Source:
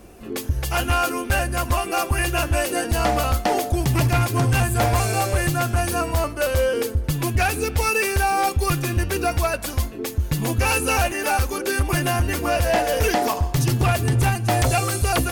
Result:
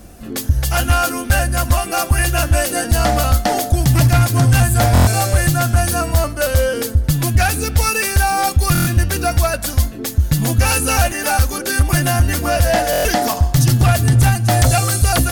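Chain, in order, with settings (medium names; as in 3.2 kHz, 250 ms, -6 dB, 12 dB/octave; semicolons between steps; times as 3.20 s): fifteen-band graphic EQ 400 Hz -11 dB, 1 kHz -7 dB, 2.5 kHz -7 dB; buffer glitch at 4.93/8.73/12.91 s, samples 1024, times 5; trim +8 dB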